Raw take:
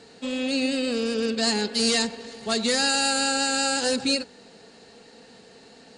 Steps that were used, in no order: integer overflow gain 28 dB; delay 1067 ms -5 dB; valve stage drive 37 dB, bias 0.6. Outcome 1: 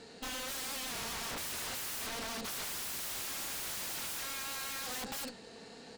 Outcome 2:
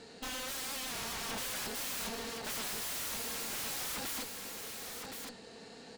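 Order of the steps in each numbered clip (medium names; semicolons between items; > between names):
delay > integer overflow > valve stage; integer overflow > valve stage > delay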